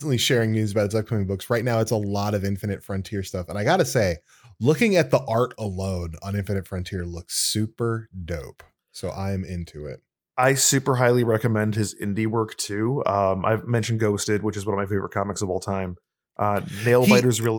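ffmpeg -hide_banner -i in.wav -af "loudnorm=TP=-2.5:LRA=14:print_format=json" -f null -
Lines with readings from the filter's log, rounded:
"input_i" : "-23.2",
"input_tp" : "-2.2",
"input_lra" : "3.3",
"input_thresh" : "-33.5",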